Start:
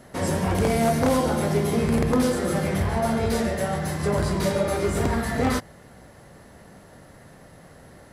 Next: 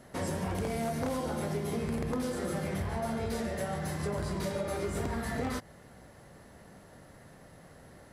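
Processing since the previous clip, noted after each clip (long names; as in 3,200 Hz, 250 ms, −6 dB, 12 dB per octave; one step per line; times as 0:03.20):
downward compressor 4 to 1, threshold −25 dBFS, peak gain reduction 7.5 dB
level −5.5 dB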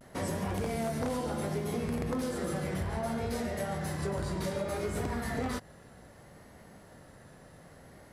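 pitch vibrato 0.65 Hz 58 cents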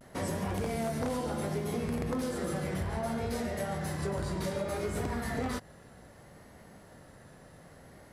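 no processing that can be heard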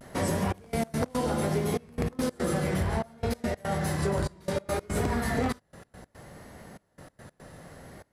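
gate pattern "xxxxx..x.x.x" 144 BPM −24 dB
level +6 dB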